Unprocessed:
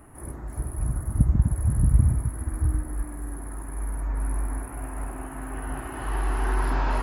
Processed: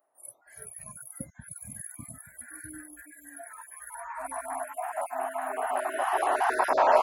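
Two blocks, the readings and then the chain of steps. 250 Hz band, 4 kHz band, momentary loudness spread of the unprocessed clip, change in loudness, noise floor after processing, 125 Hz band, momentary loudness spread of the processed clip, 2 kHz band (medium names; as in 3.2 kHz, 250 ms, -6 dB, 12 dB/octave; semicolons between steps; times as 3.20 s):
-12.5 dB, no reading, 14 LU, -3.0 dB, -63 dBFS, -29.0 dB, 19 LU, +4.0 dB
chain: random holes in the spectrogram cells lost 24%; resonant high-pass 620 Hz, resonance Q 4.9; spectral noise reduction 30 dB; trim +4 dB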